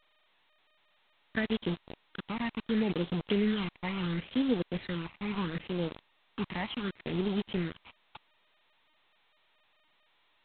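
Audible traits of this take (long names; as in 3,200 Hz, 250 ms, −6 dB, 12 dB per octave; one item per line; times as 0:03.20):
a quantiser's noise floor 6 bits, dither none
phaser sweep stages 8, 0.72 Hz, lowest notch 450–1,900 Hz
G.726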